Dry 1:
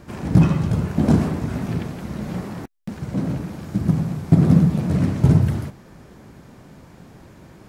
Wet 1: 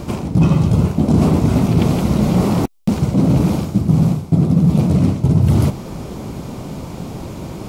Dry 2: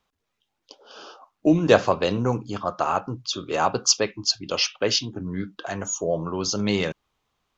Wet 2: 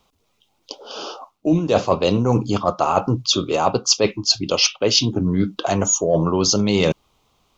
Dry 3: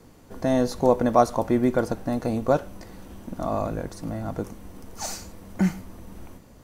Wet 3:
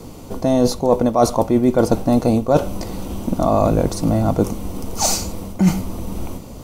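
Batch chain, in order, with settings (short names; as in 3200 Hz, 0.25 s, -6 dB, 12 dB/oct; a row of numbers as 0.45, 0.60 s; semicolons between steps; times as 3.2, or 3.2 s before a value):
bell 1700 Hz -13 dB 0.49 oct; reverse; compressor 16:1, threshold -26 dBFS; reverse; normalise peaks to -2 dBFS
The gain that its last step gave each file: +16.5, +13.0, +15.5 dB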